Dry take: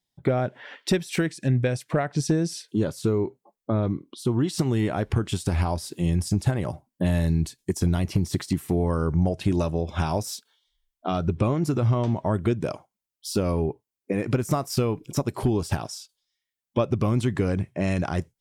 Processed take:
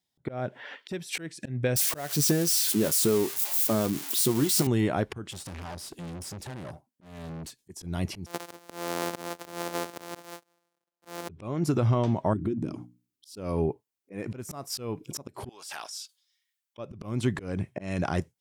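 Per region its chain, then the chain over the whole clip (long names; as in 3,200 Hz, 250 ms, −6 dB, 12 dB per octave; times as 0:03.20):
0:01.76–0:04.67: spike at every zero crossing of −20 dBFS + high-pass filter 140 Hz 6 dB per octave + double-tracking delay 14 ms −11 dB
0:05.31–0:07.57: high-pass filter 71 Hz 6 dB per octave + tube saturation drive 35 dB, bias 0.65
0:08.26–0:11.29: samples sorted by size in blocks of 256 samples + high-pass filter 390 Hz + parametric band 2,500 Hz −4.5 dB 1.8 octaves
0:12.33–0:13.37: low shelf with overshoot 420 Hz +10.5 dB, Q 3 + mains-hum notches 60/120/180/240/300 Hz + downward compressor 2.5 to 1, threshold −33 dBFS
0:15.49–0:16.78: high-pass filter 1,200 Hz + transient designer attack −8 dB, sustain +5 dB
whole clip: high-pass filter 100 Hz 6 dB per octave; volume swells 256 ms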